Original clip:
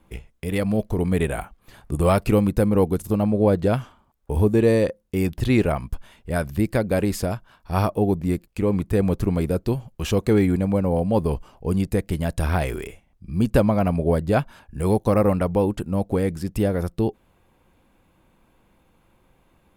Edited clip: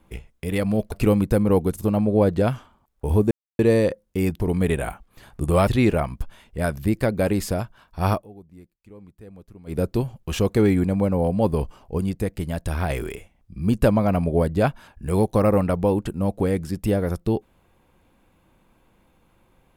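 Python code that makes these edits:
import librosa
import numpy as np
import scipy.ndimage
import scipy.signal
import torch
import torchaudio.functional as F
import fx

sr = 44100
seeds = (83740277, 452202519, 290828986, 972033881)

y = fx.edit(x, sr, fx.move(start_s=0.92, length_s=1.26, to_s=5.39),
    fx.insert_silence(at_s=4.57, length_s=0.28),
    fx.fade_down_up(start_s=7.85, length_s=1.66, db=-23.5, fade_s=0.13),
    fx.clip_gain(start_s=11.7, length_s=0.92, db=-3.0), tone=tone)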